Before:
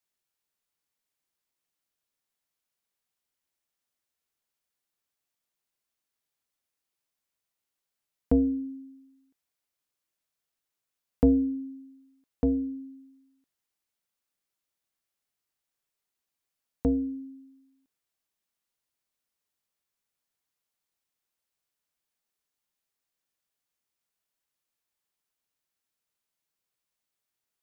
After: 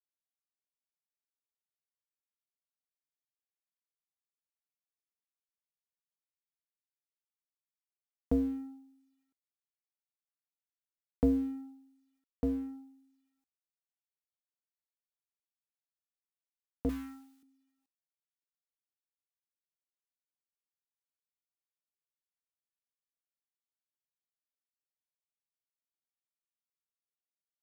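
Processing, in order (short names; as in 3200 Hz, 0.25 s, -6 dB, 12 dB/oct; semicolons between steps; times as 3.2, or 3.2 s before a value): G.711 law mismatch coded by A; 16.89–17.43 EQ curve 240 Hz 0 dB, 410 Hz -25 dB, 1100 Hz +12 dB; gain -6 dB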